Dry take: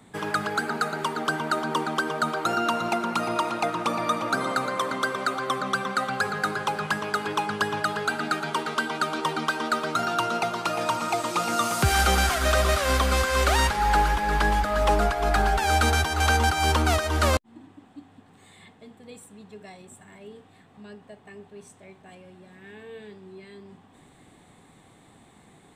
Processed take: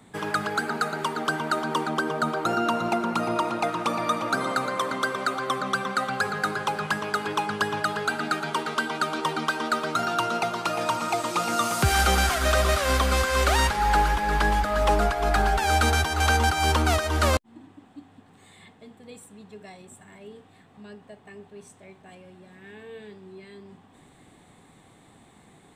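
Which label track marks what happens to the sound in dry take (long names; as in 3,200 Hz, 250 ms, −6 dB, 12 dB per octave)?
1.890000	3.630000	tilt shelving filter lows +3 dB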